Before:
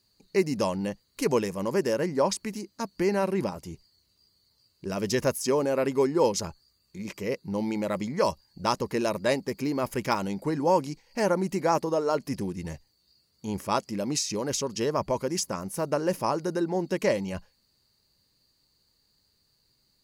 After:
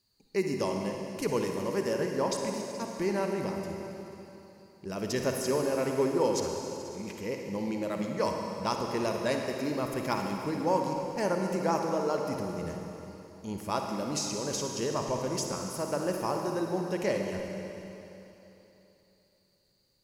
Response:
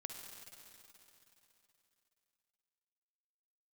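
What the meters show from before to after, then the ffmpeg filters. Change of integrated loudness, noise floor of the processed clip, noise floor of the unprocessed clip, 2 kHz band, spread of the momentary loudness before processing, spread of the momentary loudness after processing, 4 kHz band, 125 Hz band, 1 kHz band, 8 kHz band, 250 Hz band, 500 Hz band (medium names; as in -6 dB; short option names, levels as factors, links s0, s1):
-3.5 dB, -68 dBFS, -70 dBFS, -3.0 dB, 11 LU, 12 LU, -3.0 dB, -3.0 dB, -3.0 dB, -3.0 dB, -3.0 dB, -3.5 dB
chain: -filter_complex "[1:a]atrim=start_sample=2205[s0];[0:a][s0]afir=irnorm=-1:irlink=0"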